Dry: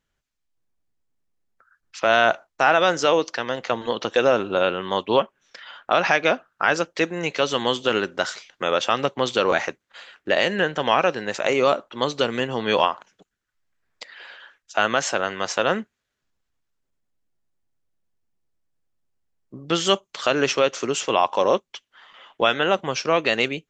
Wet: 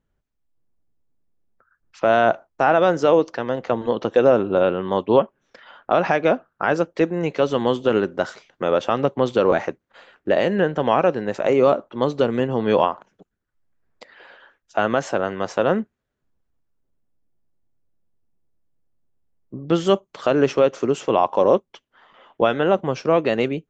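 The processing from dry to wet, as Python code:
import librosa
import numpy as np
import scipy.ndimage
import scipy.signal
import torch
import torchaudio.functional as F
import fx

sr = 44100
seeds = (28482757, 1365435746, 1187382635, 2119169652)

y = fx.tilt_shelf(x, sr, db=9.0, hz=1300.0)
y = y * librosa.db_to_amplitude(-2.5)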